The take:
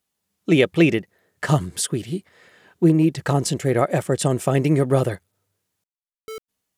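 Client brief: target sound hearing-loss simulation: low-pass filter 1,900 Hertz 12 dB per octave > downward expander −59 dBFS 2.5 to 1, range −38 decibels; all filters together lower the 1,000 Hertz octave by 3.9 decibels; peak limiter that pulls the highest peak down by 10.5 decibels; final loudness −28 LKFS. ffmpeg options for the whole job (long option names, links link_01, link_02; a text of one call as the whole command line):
ffmpeg -i in.wav -af "equalizer=frequency=1000:width_type=o:gain=-5.5,alimiter=limit=-15.5dB:level=0:latency=1,lowpass=1900,agate=range=-38dB:threshold=-59dB:ratio=2.5,volume=-1dB" out.wav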